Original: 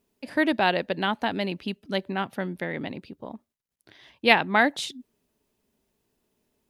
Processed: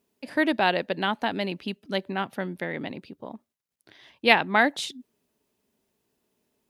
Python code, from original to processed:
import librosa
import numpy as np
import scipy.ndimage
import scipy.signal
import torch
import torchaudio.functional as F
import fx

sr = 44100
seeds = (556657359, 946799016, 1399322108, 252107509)

y = fx.highpass(x, sr, hz=120.0, slope=6)